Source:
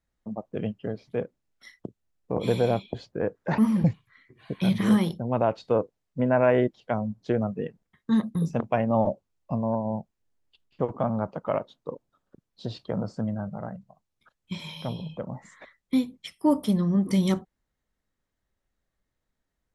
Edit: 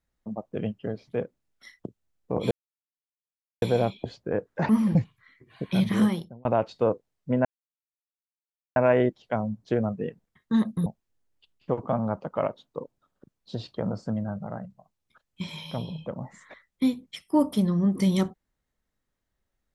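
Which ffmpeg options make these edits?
-filter_complex "[0:a]asplit=5[a][b][c][d][e];[a]atrim=end=2.51,asetpts=PTS-STARTPTS,afade=t=out:st=2.506:d=0.004:c=hsin,apad=pad_dur=1.11[f];[b]atrim=start=2.51:end=5.34,asetpts=PTS-STARTPTS,afade=t=in:d=0.004:c=hsin,afade=t=out:st=2.34:d=0.49[g];[c]atrim=start=5.34:end=6.34,asetpts=PTS-STARTPTS,afade=t=in:d=0.004:c=hsin,afade=t=out:st=0.996:d=0.004:c=hsin,apad=pad_dur=1.31[h];[d]atrim=start=6.34:end=8.442,asetpts=PTS-STARTPTS,afade=t=in:d=0.004:c=hsin[i];[e]atrim=start=9.968[j];[f][g][h][i]concat=n=4:v=0:a=1[k];[k][j]acrossfade=d=0.004:c1=hsin:c2=hsin"

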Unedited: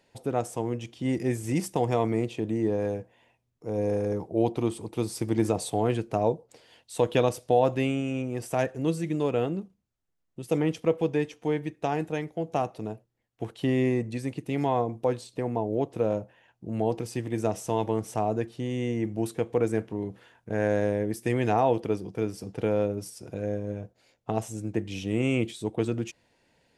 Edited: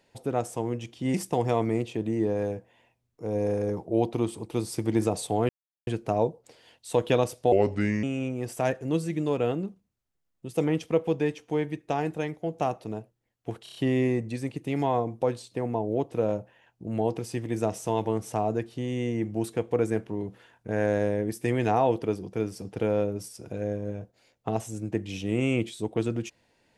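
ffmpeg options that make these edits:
-filter_complex "[0:a]asplit=9[a][b][c][d][e][f][g][h][i];[a]atrim=end=1.142[j];[b]atrim=start=1.568:end=5.92,asetpts=PTS-STARTPTS,afade=t=out:st=4.348:d=0.004:c=hsin,apad=pad_dur=0.38[k];[c]atrim=start=5.92:end=7.574,asetpts=PTS-STARTPTS,afade=t=in:d=0.004:c=hsin[l];[d]atrim=start=7.57:end=7.97,asetpts=PTS-STARTPTS,asetrate=34398,aresample=44100,atrim=end_sample=22615,asetpts=PTS-STARTPTS[m];[e]atrim=start=7.966:end=13.602[n];[f]atrim=start=13.568:end=13.602[o];[g]atrim=start=13.568:end=13.602[p];[h]atrim=start=13.568:end=13.602[q];[i]atrim=start=13.568[r];[k][l]concat=n=2:v=0:a=1[s];[j][s]acrossfade=d=0.004:c1=hsin:c2=hsin[t];[t][m]acrossfade=d=0.004:c1=hsin:c2=hsin[u];[u][n]acrossfade=d=0.004:c1=hsin:c2=hsin[v];[v][o]acrossfade=d=0.004:c1=hsin:c2=hsin[w];[w][p]acrossfade=d=0.004:c1=hsin:c2=hsin[x];[x][q]acrossfade=d=0.004:c1=hsin:c2=hsin[y];[y][r]acrossfade=d=0.004:c1=hsin:c2=hsin"

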